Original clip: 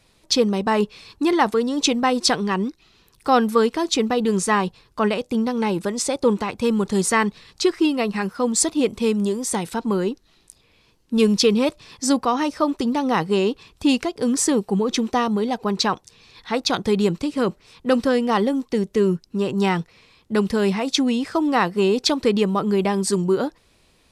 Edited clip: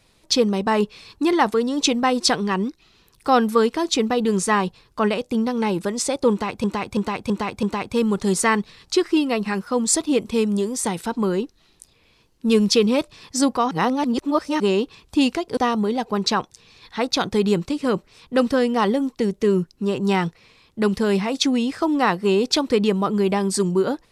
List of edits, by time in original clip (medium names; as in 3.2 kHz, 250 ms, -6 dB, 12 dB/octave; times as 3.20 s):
6.31–6.64 s: loop, 5 plays
12.39–13.28 s: reverse
14.25–15.10 s: delete